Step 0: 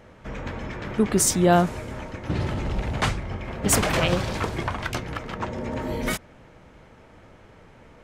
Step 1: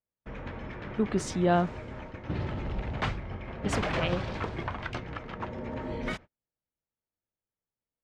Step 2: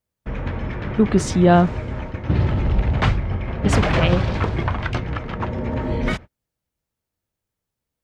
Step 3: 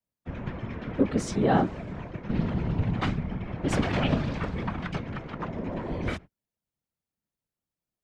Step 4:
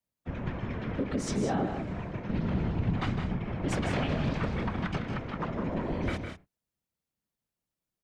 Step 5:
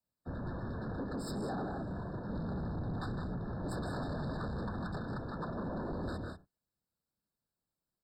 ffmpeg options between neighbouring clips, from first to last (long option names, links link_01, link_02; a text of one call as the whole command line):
ffmpeg -i in.wav -af "lowpass=3700,agate=range=-42dB:threshold=-37dB:ratio=16:detection=peak,volume=-6.5dB" out.wav
ffmpeg -i in.wav -af "equalizer=frequency=66:width_type=o:width=2.8:gain=7.5,volume=9dB" out.wav
ffmpeg -i in.wav -af "afreqshift=51,afftfilt=real='hypot(re,im)*cos(2*PI*random(0))':imag='hypot(re,im)*sin(2*PI*random(1))':win_size=512:overlap=0.75,volume=-3dB" out.wav
ffmpeg -i in.wav -filter_complex "[0:a]alimiter=limit=-21dB:level=0:latency=1:release=123,asplit=2[link_01][link_02];[link_02]aecho=0:1:157|189:0.376|0.282[link_03];[link_01][link_03]amix=inputs=2:normalize=0" out.wav
ffmpeg -i in.wav -af "asoftclip=type=tanh:threshold=-33.5dB,afftfilt=real='re*eq(mod(floor(b*sr/1024/1800),2),0)':imag='im*eq(mod(floor(b*sr/1024/1800),2),0)':win_size=1024:overlap=0.75,volume=-1dB" out.wav